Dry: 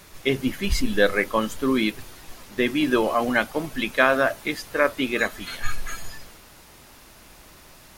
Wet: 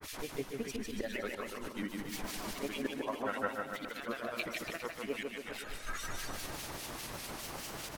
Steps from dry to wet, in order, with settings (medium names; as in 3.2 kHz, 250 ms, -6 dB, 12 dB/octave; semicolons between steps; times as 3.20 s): bass shelf 73 Hz -9.5 dB; slow attack 549 ms; compression 5:1, threshold -42 dBFS, peak gain reduction 21.5 dB; granulator, pitch spread up and down by 3 st; harmonic tremolo 4.9 Hz, depth 100%, crossover 1.9 kHz; bouncing-ball echo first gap 150 ms, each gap 0.9×, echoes 5; trim +10.5 dB